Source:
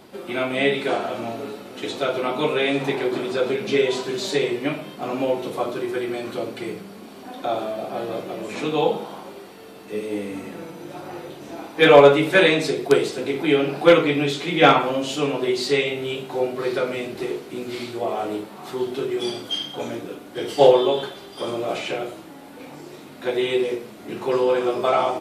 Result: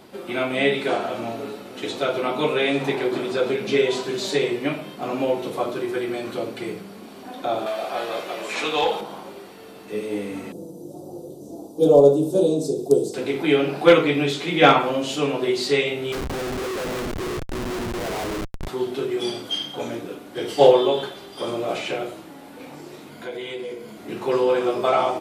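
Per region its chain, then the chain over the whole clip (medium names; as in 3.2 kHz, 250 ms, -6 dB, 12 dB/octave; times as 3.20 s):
7.66–9.01 s: bass shelf 490 Hz -9 dB + overdrive pedal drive 13 dB, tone 7.2 kHz, clips at -11 dBFS
10.52–13.14 s: Chebyshev band-stop 480–7200 Hz + thinning echo 71 ms, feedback 77%, level -18.5 dB
16.12–18.68 s: high-pass 120 Hz + Schmitt trigger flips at -30.5 dBFS + loudspeaker Doppler distortion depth 0.92 ms
23.10–23.98 s: rippled EQ curve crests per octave 1.8, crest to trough 8 dB + compression 2:1, threshold -35 dBFS
whole clip: none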